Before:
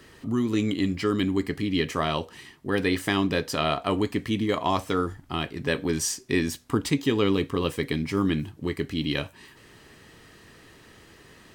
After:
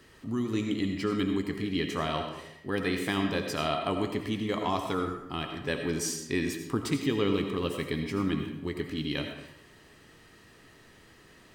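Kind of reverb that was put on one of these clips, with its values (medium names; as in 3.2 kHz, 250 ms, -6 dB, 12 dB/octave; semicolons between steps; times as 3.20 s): algorithmic reverb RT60 0.85 s, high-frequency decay 0.65×, pre-delay 45 ms, DRR 4.5 dB; trim -5.5 dB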